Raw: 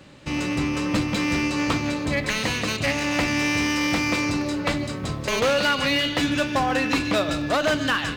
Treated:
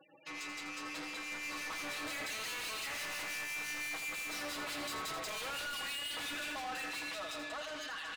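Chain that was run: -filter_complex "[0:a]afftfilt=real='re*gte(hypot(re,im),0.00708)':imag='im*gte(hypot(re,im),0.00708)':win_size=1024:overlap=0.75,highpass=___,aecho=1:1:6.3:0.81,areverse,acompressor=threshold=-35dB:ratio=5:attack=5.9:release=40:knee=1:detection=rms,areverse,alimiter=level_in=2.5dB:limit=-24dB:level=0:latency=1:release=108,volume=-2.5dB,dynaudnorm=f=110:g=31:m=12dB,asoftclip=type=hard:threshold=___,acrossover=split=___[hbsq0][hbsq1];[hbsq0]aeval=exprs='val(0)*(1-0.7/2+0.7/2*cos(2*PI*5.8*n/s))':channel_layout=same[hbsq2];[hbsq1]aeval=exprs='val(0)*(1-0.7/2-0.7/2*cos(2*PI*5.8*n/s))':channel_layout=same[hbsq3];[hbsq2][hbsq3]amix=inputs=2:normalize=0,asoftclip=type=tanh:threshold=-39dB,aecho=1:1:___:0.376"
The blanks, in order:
790, -28.5dB, 2000, 84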